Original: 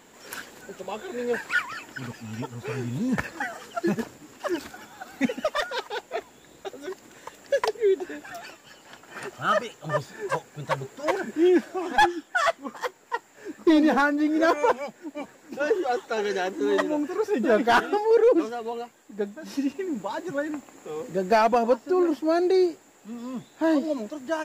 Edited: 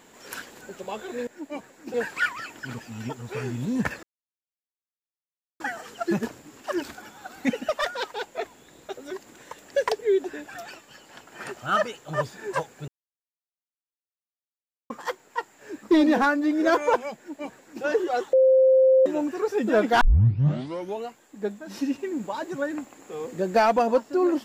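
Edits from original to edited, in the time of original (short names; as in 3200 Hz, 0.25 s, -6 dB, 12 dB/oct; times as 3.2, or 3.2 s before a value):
3.36 insert silence 1.57 s
10.64–12.66 mute
14.92–15.59 copy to 1.27
16.09–16.82 bleep 524 Hz -13.5 dBFS
17.77 tape start 1.03 s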